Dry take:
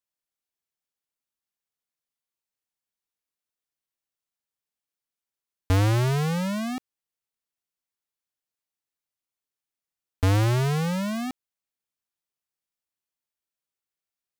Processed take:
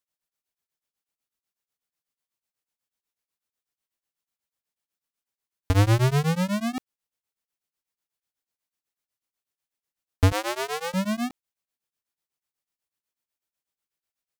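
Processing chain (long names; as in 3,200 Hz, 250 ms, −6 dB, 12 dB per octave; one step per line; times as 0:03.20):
0:10.32–0:10.94: high-pass filter 420 Hz 24 dB per octave
tremolo along a rectified sine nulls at 8.1 Hz
level +4.5 dB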